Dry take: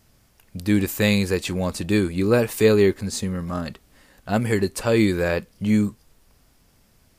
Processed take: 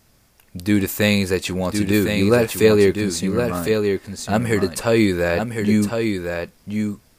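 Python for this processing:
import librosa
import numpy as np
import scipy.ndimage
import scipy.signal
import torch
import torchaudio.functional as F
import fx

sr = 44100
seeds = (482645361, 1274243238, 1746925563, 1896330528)

y = fx.low_shelf(x, sr, hz=180.0, db=-3.5)
y = fx.notch(y, sr, hz=3000.0, q=29.0)
y = y + 10.0 ** (-5.5 / 20.0) * np.pad(y, (int(1058 * sr / 1000.0), 0))[:len(y)]
y = y * 10.0 ** (3.0 / 20.0)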